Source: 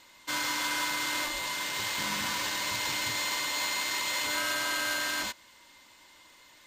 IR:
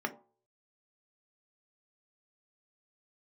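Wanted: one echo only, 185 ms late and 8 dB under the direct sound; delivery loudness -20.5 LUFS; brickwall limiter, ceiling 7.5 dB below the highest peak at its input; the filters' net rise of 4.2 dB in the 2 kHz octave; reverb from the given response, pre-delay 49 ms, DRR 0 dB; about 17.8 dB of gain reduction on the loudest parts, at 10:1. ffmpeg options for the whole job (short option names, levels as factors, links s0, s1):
-filter_complex "[0:a]equalizer=f=2000:t=o:g=5,acompressor=threshold=0.00631:ratio=10,alimiter=level_in=5.96:limit=0.0631:level=0:latency=1,volume=0.168,aecho=1:1:185:0.398,asplit=2[s0][s1];[1:a]atrim=start_sample=2205,adelay=49[s2];[s1][s2]afir=irnorm=-1:irlink=0,volume=0.531[s3];[s0][s3]amix=inputs=2:normalize=0,volume=18.8"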